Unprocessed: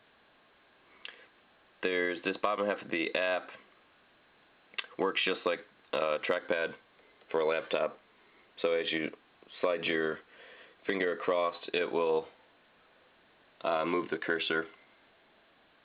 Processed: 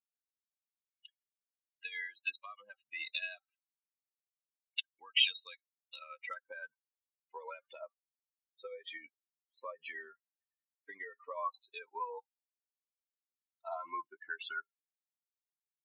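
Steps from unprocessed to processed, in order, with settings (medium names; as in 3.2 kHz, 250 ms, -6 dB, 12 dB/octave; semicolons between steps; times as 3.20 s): expander on every frequency bin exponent 3; band-pass sweep 3.2 kHz -> 1 kHz, 5.90–6.49 s; tilt EQ +4.5 dB/octave; trim +3 dB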